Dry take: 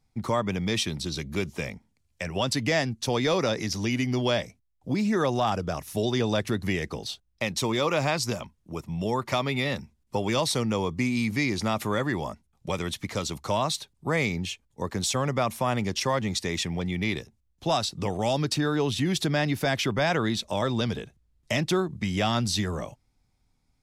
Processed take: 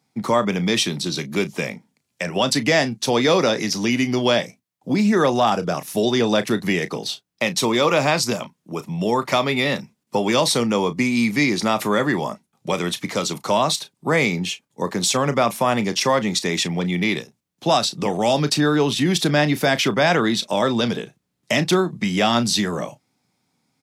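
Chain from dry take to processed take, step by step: high-pass 150 Hz 24 dB/octave; doubling 34 ms -13.5 dB; trim +7.5 dB

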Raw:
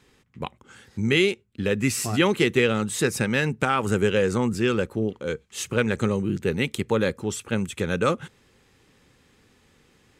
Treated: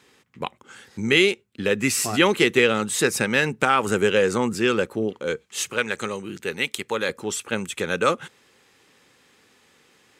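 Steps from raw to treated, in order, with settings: high-pass 350 Hz 6 dB/octave, from 5.71 s 1.1 kHz, from 7.09 s 510 Hz; trim +4.5 dB

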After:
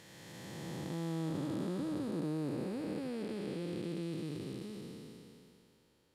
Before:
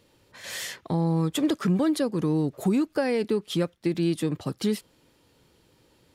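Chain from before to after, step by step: spectral blur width 1050 ms; trim -7 dB

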